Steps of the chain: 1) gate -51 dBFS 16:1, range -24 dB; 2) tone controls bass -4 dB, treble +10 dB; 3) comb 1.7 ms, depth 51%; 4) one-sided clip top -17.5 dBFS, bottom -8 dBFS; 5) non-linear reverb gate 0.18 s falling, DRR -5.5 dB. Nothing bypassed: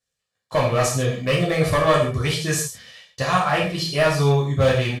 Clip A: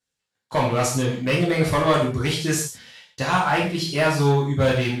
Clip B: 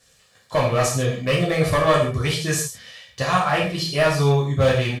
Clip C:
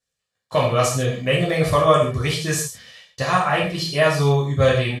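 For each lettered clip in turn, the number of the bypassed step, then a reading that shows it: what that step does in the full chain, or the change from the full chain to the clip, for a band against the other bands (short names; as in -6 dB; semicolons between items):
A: 3, 250 Hz band +3.5 dB; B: 1, momentary loudness spread change +1 LU; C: 4, distortion -14 dB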